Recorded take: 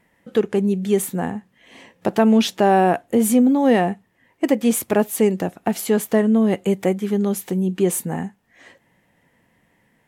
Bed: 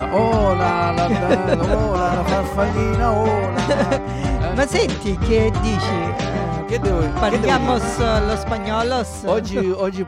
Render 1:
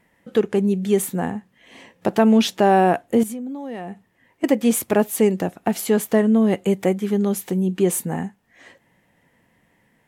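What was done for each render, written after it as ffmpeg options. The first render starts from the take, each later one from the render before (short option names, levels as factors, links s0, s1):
-filter_complex "[0:a]asettb=1/sr,asplit=3[s0][s1][s2];[s0]atrim=end=3.234[s3];[s1]atrim=start=3.23:end=4.44,asetpts=PTS-STARTPTS,afade=t=in:d=0.004:c=qsin,afade=t=out:st=1.206:d=0.004:c=qsin,acompressor=threshold=0.0355:ratio=6:attack=3.2:release=140:knee=1:detection=peak[s4];[s2]atrim=start=4.436[s5];[s3][s4]acrossfade=d=0.004:c1=hsin:c2=qsin[s6];[s6][s5]acrossfade=d=0.004:c1=qsin:c2=hsin"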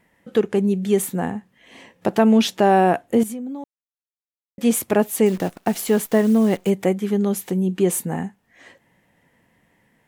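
-filter_complex "[0:a]asettb=1/sr,asplit=3[s0][s1][s2];[s0]atrim=end=5.264[s3];[s1]atrim=start=5.26:end=6.7,asetpts=PTS-STARTPTS,afade=t=in:d=0.004:c=qsin,afade=t=out:st=1.436:d=0.004:c=qsin,acrusher=bits=7:dc=4:mix=0:aa=0.000001[s4];[s2]atrim=start=6.696[s5];[s3][s4]acrossfade=d=0.004:c1=hsin:c2=qsin[s6];[s6][s5]acrossfade=d=0.004:c1=qsin:c2=hsin,asplit=3[s7][s8][s9];[s7]atrim=end=3.64,asetpts=PTS-STARTPTS,afade=t=out:st=3.636:d=0.004:c=hsin[s10];[s8]atrim=start=3.64:end=4.58,asetpts=PTS-STARTPTS,volume=0[s11];[s9]atrim=start=4.58,asetpts=PTS-STARTPTS,afade=t=in:d=0.004:c=hsin[s12];[s10][s11][s12]concat=n=3:v=0:a=1"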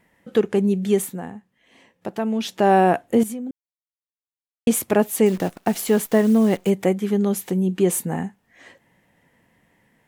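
-filter_complex "[0:a]asplit=5[s0][s1][s2][s3][s4];[s0]atrim=end=1.22,asetpts=PTS-STARTPTS,afade=t=out:st=0.91:d=0.31:silence=0.354813[s5];[s1]atrim=start=1.22:end=2.4,asetpts=PTS-STARTPTS,volume=0.355[s6];[s2]atrim=start=2.4:end=3.51,asetpts=PTS-STARTPTS,afade=t=in:d=0.31:silence=0.354813,afade=t=out:st=1.106:d=0.004:c=hsin[s7];[s3]atrim=start=3.51:end=4.67,asetpts=PTS-STARTPTS,volume=0[s8];[s4]atrim=start=4.67,asetpts=PTS-STARTPTS,afade=t=in:d=0.004:c=hsin[s9];[s5][s6][s7][s8][s9]concat=n=5:v=0:a=1"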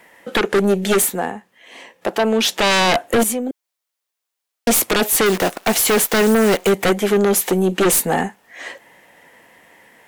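-filter_complex "[0:a]aeval=exprs='(tanh(5.01*val(0)+0.45)-tanh(0.45))/5.01':c=same,acrossover=split=350[s0][s1];[s1]aeval=exprs='0.251*sin(PI/2*4.47*val(0)/0.251)':c=same[s2];[s0][s2]amix=inputs=2:normalize=0"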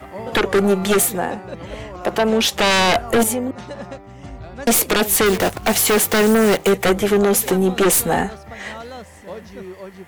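-filter_complex "[1:a]volume=0.178[s0];[0:a][s0]amix=inputs=2:normalize=0"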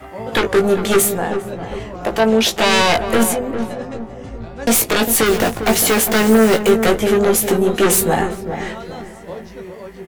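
-filter_complex "[0:a]asplit=2[s0][s1];[s1]adelay=18,volume=0.531[s2];[s0][s2]amix=inputs=2:normalize=0,asplit=2[s3][s4];[s4]adelay=402,lowpass=f=870:p=1,volume=0.447,asplit=2[s5][s6];[s6]adelay=402,lowpass=f=870:p=1,volume=0.47,asplit=2[s7][s8];[s8]adelay=402,lowpass=f=870:p=1,volume=0.47,asplit=2[s9][s10];[s10]adelay=402,lowpass=f=870:p=1,volume=0.47,asplit=2[s11][s12];[s12]adelay=402,lowpass=f=870:p=1,volume=0.47,asplit=2[s13][s14];[s14]adelay=402,lowpass=f=870:p=1,volume=0.47[s15];[s3][s5][s7][s9][s11][s13][s15]amix=inputs=7:normalize=0"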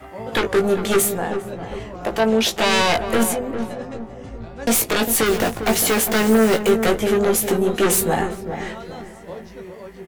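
-af "volume=0.668"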